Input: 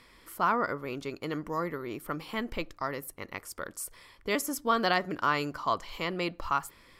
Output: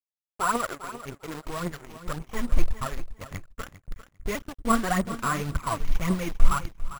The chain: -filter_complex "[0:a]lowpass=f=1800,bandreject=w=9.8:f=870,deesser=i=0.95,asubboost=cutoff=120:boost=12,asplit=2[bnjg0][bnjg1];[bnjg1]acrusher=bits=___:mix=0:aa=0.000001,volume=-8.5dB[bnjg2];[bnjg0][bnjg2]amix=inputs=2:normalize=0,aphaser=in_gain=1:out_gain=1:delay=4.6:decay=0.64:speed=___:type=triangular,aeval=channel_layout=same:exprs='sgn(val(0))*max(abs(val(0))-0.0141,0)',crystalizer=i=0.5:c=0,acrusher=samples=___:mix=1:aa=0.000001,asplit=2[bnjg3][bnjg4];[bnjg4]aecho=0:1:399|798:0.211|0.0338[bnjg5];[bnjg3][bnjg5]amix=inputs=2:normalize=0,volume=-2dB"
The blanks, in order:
4, 1.8, 5